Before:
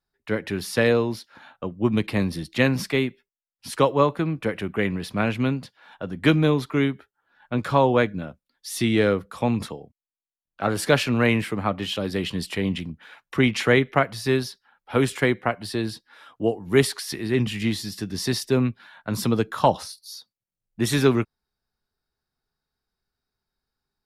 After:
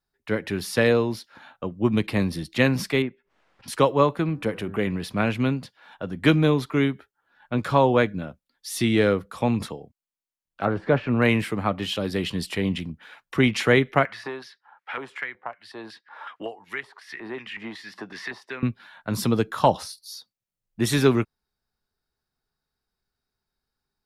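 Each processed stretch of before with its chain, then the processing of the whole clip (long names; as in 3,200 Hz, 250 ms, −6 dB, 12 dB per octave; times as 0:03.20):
0:03.02–0:03.68: low-pass filter 1,800 Hz + low-shelf EQ 210 Hz −5.5 dB + background raised ahead of every attack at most 71 dB per second
0:04.29–0:04.87: hum removal 97.97 Hz, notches 19 + dynamic equaliser 1,900 Hz, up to −5 dB, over −39 dBFS, Q 1 + upward compression, threshold −28 dBFS
0:10.65–0:11.22: de-essing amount 75% + low-pass filter 1,800 Hz
0:14.05–0:18.63: auto-filter band-pass square 2.7 Hz 920–1,900 Hz + multiband upward and downward compressor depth 100%
whole clip: no processing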